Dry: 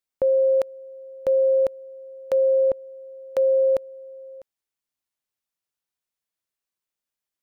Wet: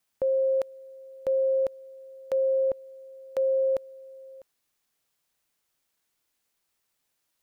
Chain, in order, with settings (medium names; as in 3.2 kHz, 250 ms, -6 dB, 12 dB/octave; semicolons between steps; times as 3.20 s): word length cut 12-bit, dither triangular; trim -5.5 dB